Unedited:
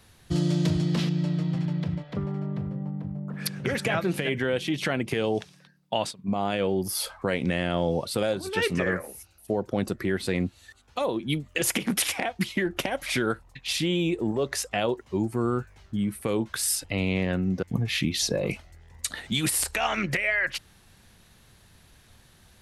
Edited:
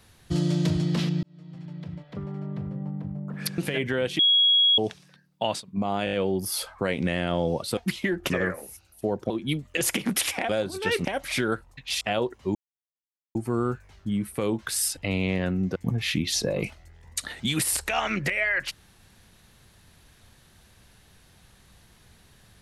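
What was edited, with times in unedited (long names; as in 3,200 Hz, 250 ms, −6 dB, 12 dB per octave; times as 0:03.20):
0:01.23–0:02.90: fade in
0:03.58–0:04.09: remove
0:04.70–0:05.29: beep over 3,320 Hz −16 dBFS
0:06.56: stutter 0.02 s, 5 plays
0:08.20–0:08.76: swap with 0:12.30–0:12.83
0:09.76–0:11.11: remove
0:13.79–0:14.68: remove
0:15.22: splice in silence 0.80 s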